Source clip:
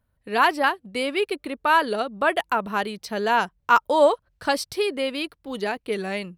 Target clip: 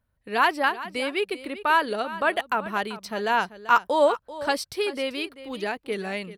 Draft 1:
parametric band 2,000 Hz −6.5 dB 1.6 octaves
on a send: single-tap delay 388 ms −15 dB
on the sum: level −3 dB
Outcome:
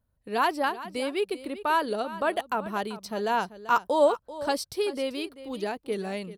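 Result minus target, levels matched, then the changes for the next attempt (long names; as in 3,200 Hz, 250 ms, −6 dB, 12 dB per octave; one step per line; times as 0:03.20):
2,000 Hz band −4.5 dB
change: parametric band 2,000 Hz +2 dB 1.6 octaves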